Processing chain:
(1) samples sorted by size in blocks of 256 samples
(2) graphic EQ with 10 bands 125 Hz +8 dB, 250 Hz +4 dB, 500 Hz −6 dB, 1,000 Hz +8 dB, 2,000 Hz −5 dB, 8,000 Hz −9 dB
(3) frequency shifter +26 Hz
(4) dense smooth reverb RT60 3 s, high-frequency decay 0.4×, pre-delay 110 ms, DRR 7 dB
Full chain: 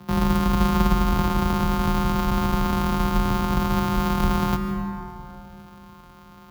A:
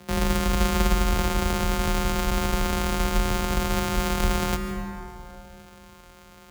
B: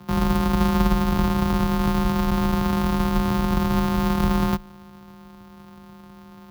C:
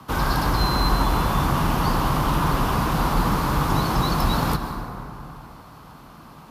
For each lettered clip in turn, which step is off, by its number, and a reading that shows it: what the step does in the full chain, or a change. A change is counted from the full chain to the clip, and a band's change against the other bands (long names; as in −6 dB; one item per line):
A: 2, change in integrated loudness −2.5 LU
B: 4, change in momentary loudness spread −9 LU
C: 1, change in crest factor −2.0 dB